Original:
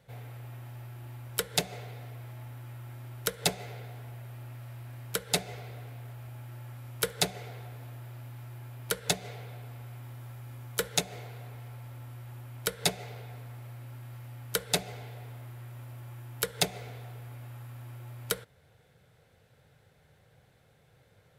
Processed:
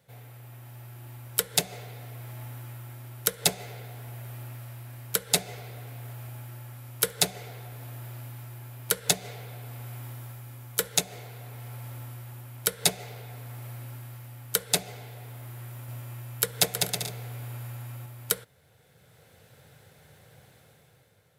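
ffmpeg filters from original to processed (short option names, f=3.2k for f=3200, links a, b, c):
-filter_complex "[0:a]asettb=1/sr,asplit=3[a][b][c];[a]atrim=end=15.684[d];[b]atrim=start=15.68:end=18.06,asetpts=PTS-STARTPTS,afade=t=in:d=0.004:c=qsin,afade=t=out:st=2.376:d=0.004:c=qsin,aecho=1:1:200|320|392|435.2|461.1:0.631|0.398|0.251|0.158|0.1,atrim=end_sample=104958[e];[c]atrim=start=18.056[f];[d][e]acrossfade=d=0.004:c1=hsin:c2=qsin[g];[g][f]acrossfade=d=0.004:c1=qsin:c2=hsin,highpass=73,highshelf=f=6.2k:g=9,dynaudnorm=f=110:g=13:m=10.5dB,volume=-3dB"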